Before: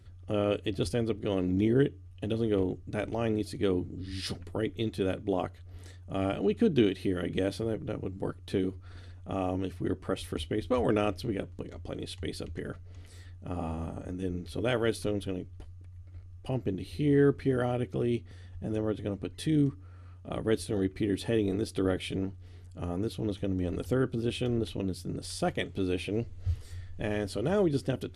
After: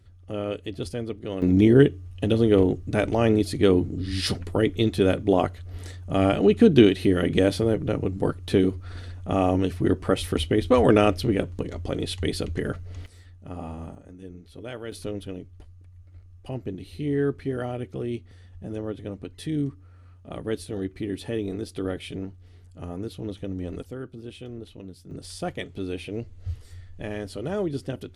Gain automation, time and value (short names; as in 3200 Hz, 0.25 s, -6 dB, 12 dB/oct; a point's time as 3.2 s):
-1.5 dB
from 1.42 s +9.5 dB
from 13.06 s -1 dB
from 13.95 s -8 dB
from 14.92 s -1 dB
from 23.83 s -8.5 dB
from 25.11 s -1 dB